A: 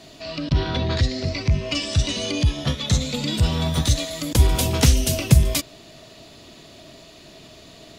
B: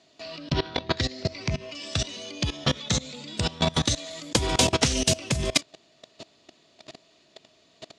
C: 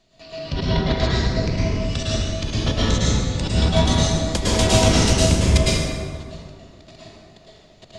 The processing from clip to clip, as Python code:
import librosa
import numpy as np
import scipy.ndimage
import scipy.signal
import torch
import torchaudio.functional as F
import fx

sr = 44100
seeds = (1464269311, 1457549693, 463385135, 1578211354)

y1 = scipy.signal.sosfilt(scipy.signal.butter(4, 8100.0, 'lowpass', fs=sr, output='sos'), x)
y1 = fx.level_steps(y1, sr, step_db=22)
y1 = fx.highpass(y1, sr, hz=280.0, slope=6)
y1 = F.gain(torch.from_numpy(y1), 6.5).numpy()
y2 = fx.octave_divider(y1, sr, octaves=1, level_db=4.0)
y2 = fx.dmg_noise_colour(y2, sr, seeds[0], colour='brown', level_db=-63.0)
y2 = fx.rev_plate(y2, sr, seeds[1], rt60_s=2.1, hf_ratio=0.5, predelay_ms=95, drr_db=-8.5)
y2 = F.gain(torch.from_numpy(y2), -4.0).numpy()